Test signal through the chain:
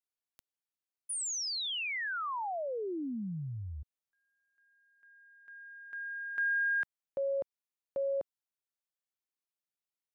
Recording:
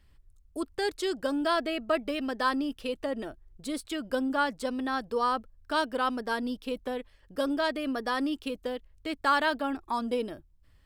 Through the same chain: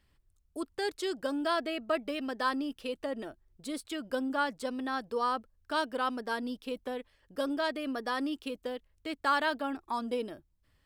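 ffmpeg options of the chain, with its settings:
-af "lowshelf=f=75:g=-10.5,volume=0.708"

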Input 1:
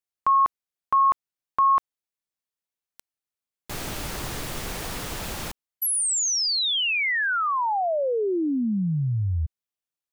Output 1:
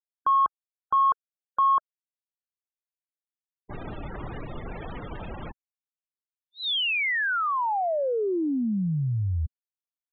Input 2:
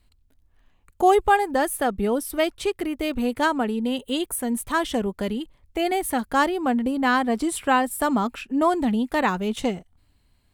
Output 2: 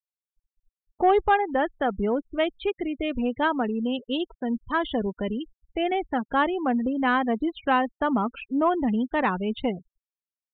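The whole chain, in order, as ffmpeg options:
-af "afftfilt=real='re*gte(hypot(re,im),0.0316)':imag='im*gte(hypot(re,im),0.0316)':win_size=1024:overlap=0.75,acontrast=49,aresample=8000,aresample=44100,volume=0.422"

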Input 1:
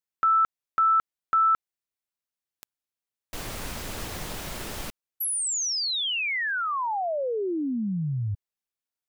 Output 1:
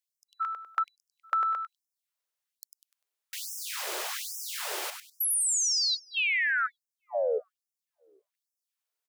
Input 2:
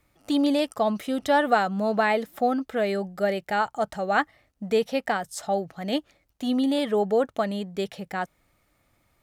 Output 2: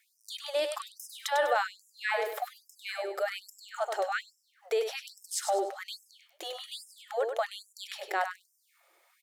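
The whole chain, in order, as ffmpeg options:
-filter_complex "[0:a]acompressor=threshold=0.0316:ratio=6:attack=12:release=26:knee=6:detection=peak,asplit=2[s0][s1];[s1]aecho=0:1:99|198|297|396:0.447|0.143|0.0457|0.0146[s2];[s0][s2]amix=inputs=2:normalize=0,afftfilt=real='re*gte(b*sr/1024,310*pow(5200/310,0.5+0.5*sin(2*PI*1.2*pts/sr)))':imag='im*gte(b*sr/1024,310*pow(5200/310,0.5+0.5*sin(2*PI*1.2*pts/sr)))':win_size=1024:overlap=0.75,volume=1.41"

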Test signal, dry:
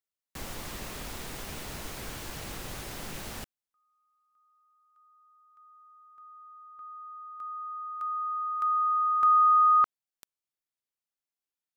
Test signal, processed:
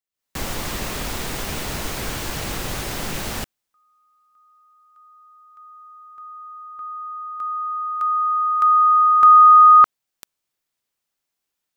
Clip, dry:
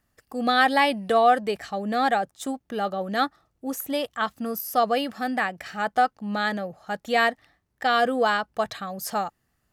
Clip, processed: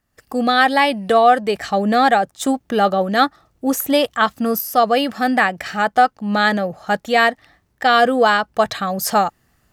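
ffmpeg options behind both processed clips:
-af "dynaudnorm=f=120:g=3:m=4.47,equalizer=f=11000:t=o:w=0.33:g=-2.5,volume=0.891"

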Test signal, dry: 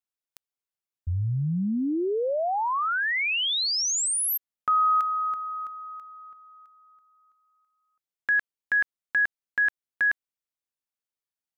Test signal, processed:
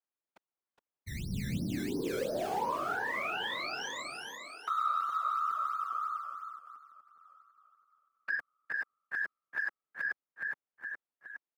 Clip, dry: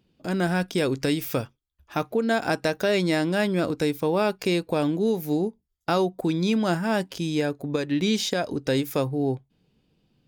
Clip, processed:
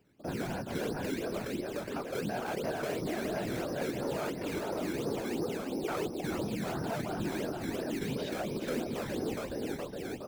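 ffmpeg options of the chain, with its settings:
-filter_complex "[0:a]aecho=1:1:416|832|1248|1664|2080|2496:0.447|0.219|0.107|0.0526|0.0258|0.0126,acrossover=split=590|1100[s0][s1][s2];[s0]acrusher=samples=16:mix=1:aa=0.000001:lfo=1:lforange=16:lforate=2.9[s3];[s2]lowpass=1600[s4];[s3][s1][s4]amix=inputs=3:normalize=0,asoftclip=type=tanh:threshold=0.112,highpass=200,acompressor=threshold=0.02:ratio=4:attack=2:release=53:knee=6,afftfilt=real='hypot(re,im)*cos(2*PI*random(0))':imag='hypot(re,im)*sin(2*PI*random(1))':win_size=512:overlap=0.75,volume=2.51"

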